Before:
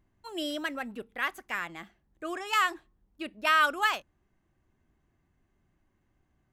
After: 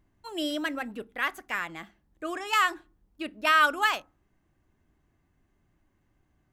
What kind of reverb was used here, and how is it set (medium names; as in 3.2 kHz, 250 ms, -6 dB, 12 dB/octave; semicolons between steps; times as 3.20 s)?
FDN reverb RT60 0.31 s, low-frequency decay 1.6×, high-frequency decay 0.4×, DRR 17.5 dB; trim +2 dB